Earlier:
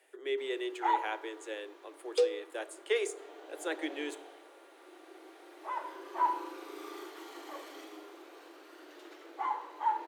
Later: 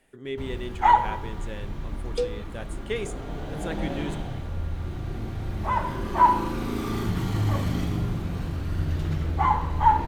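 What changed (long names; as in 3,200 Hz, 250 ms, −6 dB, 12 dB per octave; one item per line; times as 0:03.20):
first sound +11.5 dB
master: remove Butterworth high-pass 310 Hz 96 dB per octave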